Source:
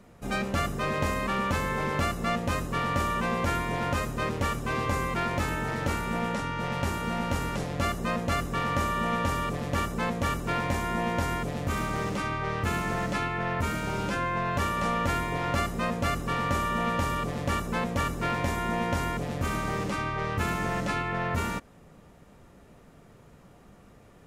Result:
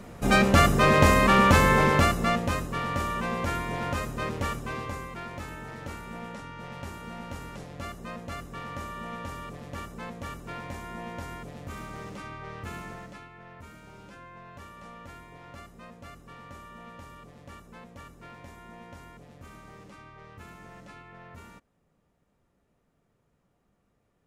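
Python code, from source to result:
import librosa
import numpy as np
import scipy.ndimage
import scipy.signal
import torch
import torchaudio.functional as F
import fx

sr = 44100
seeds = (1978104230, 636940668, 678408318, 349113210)

y = fx.gain(x, sr, db=fx.line((1.73, 9.5), (2.74, -2.0), (4.51, -2.0), (5.1, -10.0), (12.83, -10.0), (13.28, -18.5)))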